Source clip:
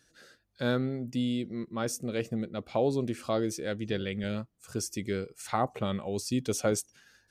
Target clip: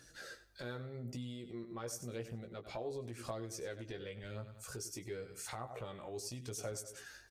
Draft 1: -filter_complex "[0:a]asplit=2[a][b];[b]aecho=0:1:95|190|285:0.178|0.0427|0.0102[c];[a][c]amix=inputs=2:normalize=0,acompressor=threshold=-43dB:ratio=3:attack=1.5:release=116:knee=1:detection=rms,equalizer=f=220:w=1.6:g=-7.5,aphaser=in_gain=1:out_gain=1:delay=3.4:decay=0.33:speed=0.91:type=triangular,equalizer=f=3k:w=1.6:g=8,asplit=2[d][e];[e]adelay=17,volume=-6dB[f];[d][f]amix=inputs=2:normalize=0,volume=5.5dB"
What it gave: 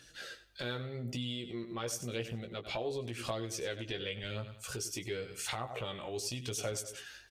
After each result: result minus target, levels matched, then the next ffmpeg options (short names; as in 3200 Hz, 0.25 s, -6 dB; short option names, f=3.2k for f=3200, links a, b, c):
4000 Hz band +5.5 dB; compressor: peak gain reduction -4.5 dB
-filter_complex "[0:a]asplit=2[a][b];[b]aecho=0:1:95|190|285:0.178|0.0427|0.0102[c];[a][c]amix=inputs=2:normalize=0,acompressor=threshold=-43dB:ratio=3:attack=1.5:release=116:knee=1:detection=rms,equalizer=f=220:w=1.6:g=-7.5,aphaser=in_gain=1:out_gain=1:delay=3.4:decay=0.33:speed=0.91:type=triangular,equalizer=f=3k:w=1.6:g=-3.5,asplit=2[d][e];[e]adelay=17,volume=-6dB[f];[d][f]amix=inputs=2:normalize=0,volume=5.5dB"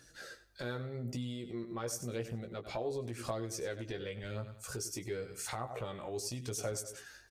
compressor: peak gain reduction -4.5 dB
-filter_complex "[0:a]asplit=2[a][b];[b]aecho=0:1:95|190|285:0.178|0.0427|0.0102[c];[a][c]amix=inputs=2:normalize=0,acompressor=threshold=-50dB:ratio=3:attack=1.5:release=116:knee=1:detection=rms,equalizer=f=220:w=1.6:g=-7.5,aphaser=in_gain=1:out_gain=1:delay=3.4:decay=0.33:speed=0.91:type=triangular,equalizer=f=3k:w=1.6:g=-3.5,asplit=2[d][e];[e]adelay=17,volume=-6dB[f];[d][f]amix=inputs=2:normalize=0,volume=5.5dB"